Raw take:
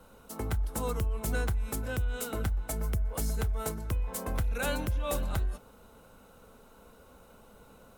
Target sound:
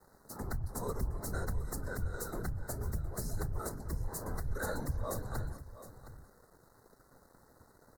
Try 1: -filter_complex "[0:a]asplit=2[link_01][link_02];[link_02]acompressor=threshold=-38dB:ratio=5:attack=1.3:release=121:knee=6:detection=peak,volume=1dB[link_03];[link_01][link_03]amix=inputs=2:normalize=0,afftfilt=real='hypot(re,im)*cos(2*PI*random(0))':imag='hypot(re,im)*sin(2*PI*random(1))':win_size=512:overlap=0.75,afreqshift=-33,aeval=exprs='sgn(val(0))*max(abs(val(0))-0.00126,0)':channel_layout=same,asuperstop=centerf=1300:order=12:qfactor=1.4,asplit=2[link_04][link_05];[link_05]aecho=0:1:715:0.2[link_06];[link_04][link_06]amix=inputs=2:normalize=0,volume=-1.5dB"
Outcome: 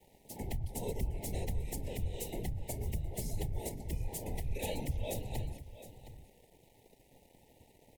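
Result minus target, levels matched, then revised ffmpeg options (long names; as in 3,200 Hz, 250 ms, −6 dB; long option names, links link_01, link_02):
2,000 Hz band −6.0 dB
-filter_complex "[0:a]asplit=2[link_01][link_02];[link_02]acompressor=threshold=-38dB:ratio=5:attack=1.3:release=121:knee=6:detection=peak,volume=1dB[link_03];[link_01][link_03]amix=inputs=2:normalize=0,afftfilt=real='hypot(re,im)*cos(2*PI*random(0))':imag='hypot(re,im)*sin(2*PI*random(1))':win_size=512:overlap=0.75,afreqshift=-33,aeval=exprs='sgn(val(0))*max(abs(val(0))-0.00126,0)':channel_layout=same,asuperstop=centerf=2800:order=12:qfactor=1.4,asplit=2[link_04][link_05];[link_05]aecho=0:1:715:0.2[link_06];[link_04][link_06]amix=inputs=2:normalize=0,volume=-1.5dB"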